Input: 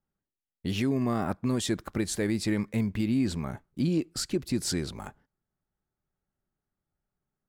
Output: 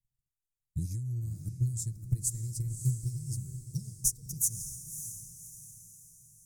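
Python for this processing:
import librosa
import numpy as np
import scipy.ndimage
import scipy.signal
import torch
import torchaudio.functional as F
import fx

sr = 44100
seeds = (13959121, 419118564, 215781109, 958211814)

p1 = fx.speed_glide(x, sr, from_pct=81, to_pct=151)
p2 = scipy.signal.sosfilt(scipy.signal.ellip(3, 1.0, 40, [120.0, 7000.0], 'bandstop', fs=sr, output='sos'), p1)
p3 = fx.transient(p2, sr, attack_db=10, sustain_db=-5)
p4 = p3 + 0.38 * np.pad(p3, (int(6.4 * sr / 1000.0), 0))[:len(p3)]
y = p4 + fx.echo_diffused(p4, sr, ms=588, feedback_pct=43, wet_db=-9.0, dry=0)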